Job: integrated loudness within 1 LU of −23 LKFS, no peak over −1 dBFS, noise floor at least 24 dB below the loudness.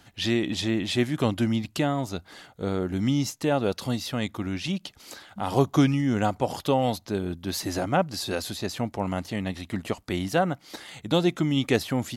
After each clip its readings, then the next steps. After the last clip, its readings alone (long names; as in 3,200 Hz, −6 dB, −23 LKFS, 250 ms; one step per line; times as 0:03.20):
integrated loudness −27.0 LKFS; sample peak −7.0 dBFS; target loudness −23.0 LKFS
→ level +4 dB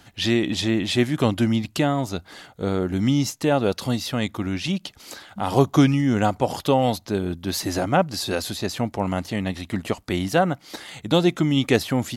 integrated loudness −23.0 LKFS; sample peak −3.0 dBFS; background noise floor −55 dBFS